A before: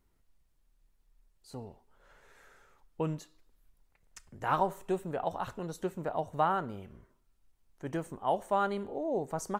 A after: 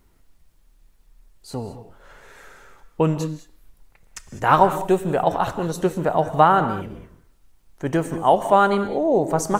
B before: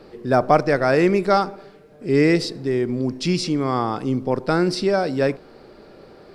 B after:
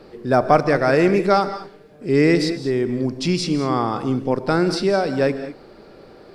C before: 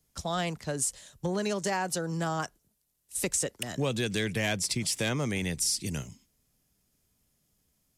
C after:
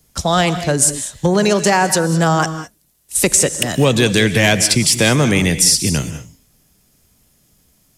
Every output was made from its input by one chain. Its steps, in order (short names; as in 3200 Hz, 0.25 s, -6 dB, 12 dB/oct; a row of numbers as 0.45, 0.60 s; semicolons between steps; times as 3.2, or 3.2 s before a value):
non-linear reverb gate 0.23 s rising, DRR 11 dB; normalise peaks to -1.5 dBFS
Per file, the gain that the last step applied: +13.5, +0.5, +16.0 dB